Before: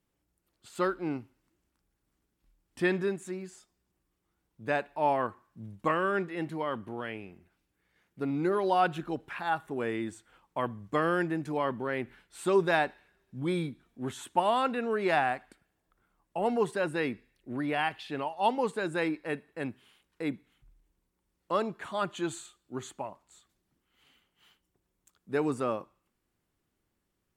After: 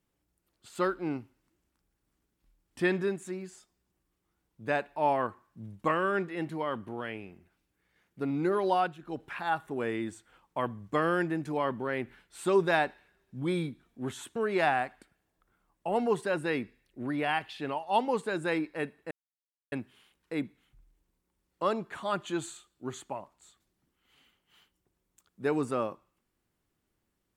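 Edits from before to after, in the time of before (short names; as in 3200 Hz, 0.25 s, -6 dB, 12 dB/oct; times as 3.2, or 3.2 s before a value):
8.73–9.23 dip -14.5 dB, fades 0.25 s
14.36–14.86 cut
19.61 insert silence 0.61 s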